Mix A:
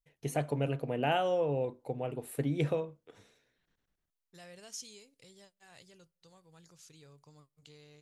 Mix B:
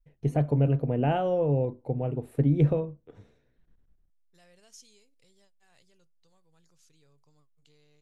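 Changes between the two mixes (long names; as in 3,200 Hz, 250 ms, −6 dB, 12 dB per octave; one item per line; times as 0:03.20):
first voice: add spectral tilt −4 dB per octave
second voice −8.0 dB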